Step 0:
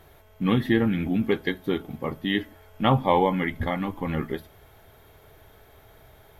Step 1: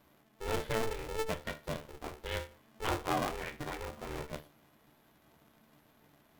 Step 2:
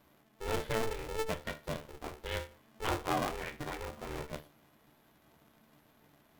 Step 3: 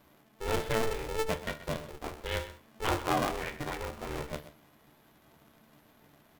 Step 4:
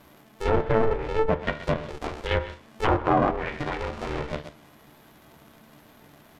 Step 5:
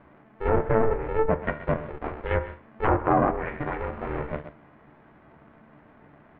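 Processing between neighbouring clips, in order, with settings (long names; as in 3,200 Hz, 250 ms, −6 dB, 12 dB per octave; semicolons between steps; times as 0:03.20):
pitch vibrato 8.7 Hz 60 cents; tuned comb filter 75 Hz, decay 0.3 s, harmonics all, mix 80%; ring modulator with a square carrier 220 Hz; level −6 dB
no processing that can be heard
single-tap delay 128 ms −14.5 dB; level +3.5 dB
treble cut that deepens with the level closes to 1,300 Hz, closed at −28 dBFS; in parallel at −1 dB: output level in coarse steps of 17 dB; on the sum: level +5.5 dB
low-pass filter 2,100 Hz 24 dB per octave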